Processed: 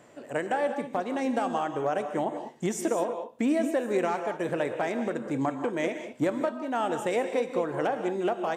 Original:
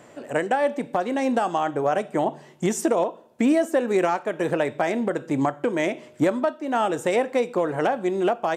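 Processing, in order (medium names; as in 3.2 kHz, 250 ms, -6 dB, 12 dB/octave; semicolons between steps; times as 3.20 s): gated-style reverb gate 220 ms rising, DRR 7.5 dB; trim -6 dB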